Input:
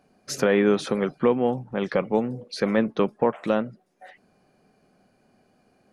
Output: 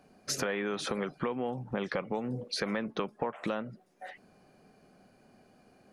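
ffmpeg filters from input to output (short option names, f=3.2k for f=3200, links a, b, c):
-filter_complex "[0:a]acrossover=split=740[a][b];[a]alimiter=limit=-20.5dB:level=0:latency=1:release=154[c];[c][b]amix=inputs=2:normalize=0,acompressor=threshold=-31dB:ratio=6,volume=1.5dB"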